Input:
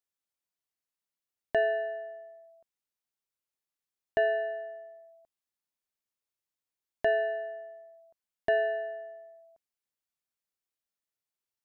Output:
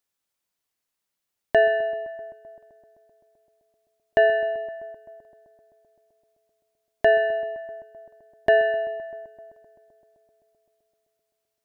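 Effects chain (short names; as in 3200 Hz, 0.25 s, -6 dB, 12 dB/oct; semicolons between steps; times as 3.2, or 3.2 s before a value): darkening echo 0.129 s, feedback 81%, low-pass 2600 Hz, level -17 dB; gain +8.5 dB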